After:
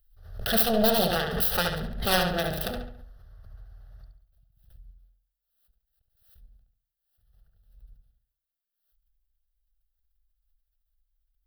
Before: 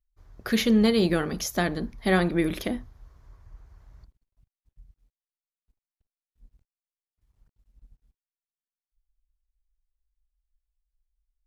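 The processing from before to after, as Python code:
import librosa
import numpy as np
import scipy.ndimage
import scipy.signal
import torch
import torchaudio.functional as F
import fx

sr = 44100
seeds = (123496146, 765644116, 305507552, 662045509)

p1 = fx.self_delay(x, sr, depth_ms=0.97)
p2 = fx.high_shelf(p1, sr, hz=9700.0, db=12.0)
p3 = fx.schmitt(p2, sr, flips_db=-34.0)
p4 = p2 + (p3 * 10.0 ** (-8.5 / 20.0))
p5 = fx.fixed_phaser(p4, sr, hz=1500.0, stages=8)
p6 = p5 + fx.echo_filtered(p5, sr, ms=70, feedback_pct=42, hz=4200.0, wet_db=-4.5, dry=0)
y = fx.pre_swell(p6, sr, db_per_s=79.0)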